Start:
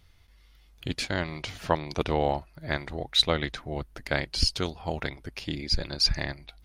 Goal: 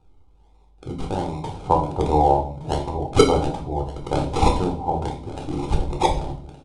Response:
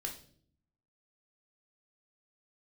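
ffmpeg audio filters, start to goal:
-filter_complex "[0:a]acrossover=split=770|1000[a][b][c];[c]acrusher=samples=40:mix=1:aa=0.000001:lfo=1:lforange=24:lforate=1.3[d];[a][b][d]amix=inputs=3:normalize=0[e];[1:a]atrim=start_sample=2205,afade=t=out:st=0.39:d=0.01,atrim=end_sample=17640[f];[e][f]afir=irnorm=-1:irlink=0,aresample=22050,aresample=44100,dynaudnorm=f=310:g=9:m=6dB,aeval=exprs='0.668*(cos(1*acos(clip(val(0)/0.668,-1,1)))-cos(1*PI/2))+0.0376*(cos(2*acos(clip(val(0)/0.668,-1,1)))-cos(2*PI/2))':c=same,superequalizer=9b=2.82:11b=0.355:13b=1.41,aecho=1:1:1167|2334:0.158|0.0285,volume=1dB"

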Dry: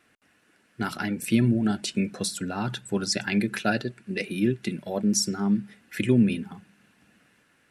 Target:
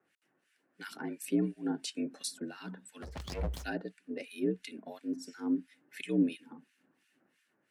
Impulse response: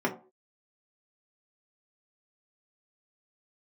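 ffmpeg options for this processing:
-filter_complex "[0:a]acrossover=split=1400[a][b];[a]aeval=exprs='val(0)*(1-1/2+1/2*cos(2*PI*2.9*n/s))':c=same[c];[b]aeval=exprs='val(0)*(1-1/2-1/2*cos(2*PI*2.9*n/s))':c=same[d];[c][d]amix=inputs=2:normalize=0,asettb=1/sr,asplit=3[e][f][g];[e]atrim=end=3.024[h];[f]atrim=start=3.02:end=3.64,asetpts=PTS-STARTPTS,afade=t=in:d=0.004:c=qsin,afade=t=out:st=0.616:d=0.004:c=qsin,aeval=exprs='abs(val(0))':c=same[i];[g]atrim=start=3.636[j];[h][i]acrossfade=d=0.004:c1=hsin:c2=qsin[k];[k][j]acrossfade=d=0.004:c1=qsin:c2=hsin,afreqshift=61,volume=-7dB"

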